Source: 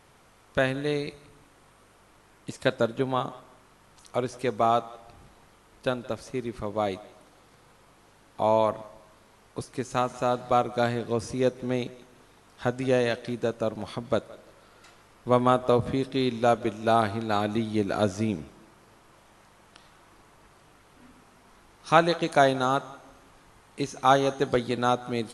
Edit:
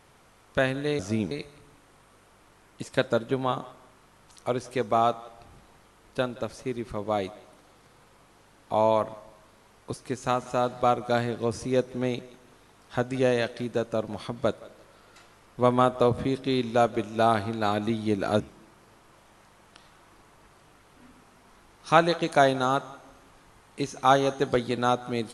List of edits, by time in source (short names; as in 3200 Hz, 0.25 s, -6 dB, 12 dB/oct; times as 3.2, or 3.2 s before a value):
18.08–18.4 move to 0.99